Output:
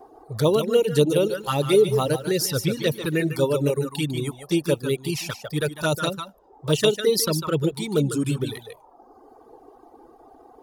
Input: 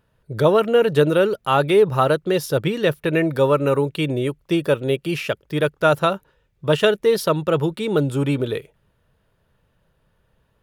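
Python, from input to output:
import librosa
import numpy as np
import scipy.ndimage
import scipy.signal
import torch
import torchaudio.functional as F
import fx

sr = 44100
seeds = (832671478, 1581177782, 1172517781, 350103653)

y = fx.peak_eq(x, sr, hz=680.0, db=-7.0, octaves=0.52)
y = fx.dmg_noise_band(y, sr, seeds[0], low_hz=200.0, high_hz=930.0, level_db=-45.0)
y = y + 10.0 ** (-6.0 / 20.0) * np.pad(y, (int(149 * sr / 1000.0), 0))[:len(y)]
y = fx.dereverb_blind(y, sr, rt60_s=0.9)
y = fx.env_flanger(y, sr, rest_ms=2.8, full_db=-14.5)
y = fx.high_shelf_res(y, sr, hz=3800.0, db=9.5, q=1.5)
y = fx.echo_crushed(y, sr, ms=140, feedback_pct=35, bits=8, wet_db=-14.5, at=(1.15, 3.29))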